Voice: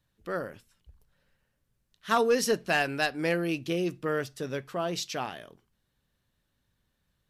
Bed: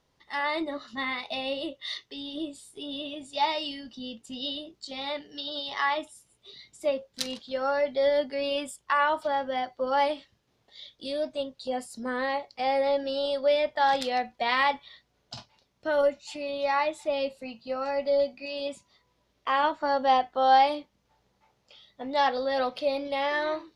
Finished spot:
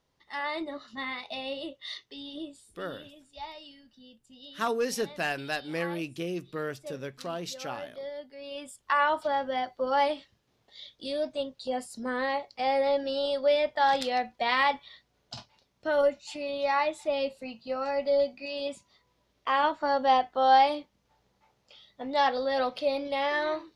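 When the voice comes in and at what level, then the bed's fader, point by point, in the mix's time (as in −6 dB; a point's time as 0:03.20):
2.50 s, −4.5 dB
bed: 0:02.34 −4 dB
0:03.17 −15 dB
0:08.36 −15 dB
0:08.90 −0.5 dB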